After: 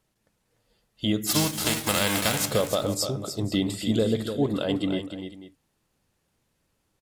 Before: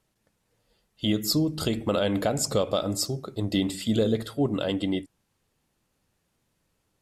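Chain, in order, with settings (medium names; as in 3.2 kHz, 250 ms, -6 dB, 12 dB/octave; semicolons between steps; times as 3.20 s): 1.26–2.45 s: formants flattened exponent 0.3; multi-tap echo 295/492 ms -8.5/-17.5 dB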